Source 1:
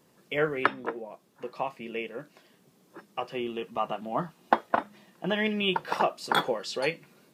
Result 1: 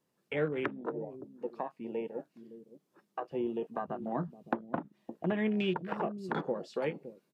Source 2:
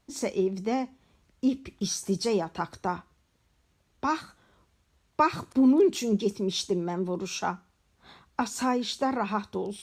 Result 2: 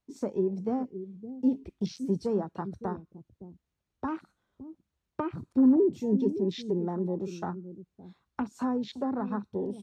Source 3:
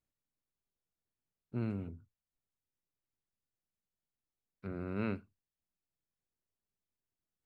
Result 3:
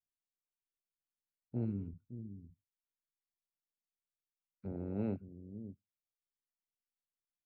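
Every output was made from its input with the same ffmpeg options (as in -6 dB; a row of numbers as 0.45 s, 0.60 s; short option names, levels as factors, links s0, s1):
-filter_complex "[0:a]afwtdn=0.02,acrossover=split=2700[s0][s1];[s1]acompressor=threshold=0.00562:ratio=4:attack=1:release=60[s2];[s0][s2]amix=inputs=2:normalize=0,acrossover=split=420[s3][s4];[s3]aecho=1:1:564:0.335[s5];[s4]acompressor=threshold=0.0178:ratio=10[s6];[s5][s6]amix=inputs=2:normalize=0"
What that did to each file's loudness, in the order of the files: -6.0 LU, -2.0 LU, -2.0 LU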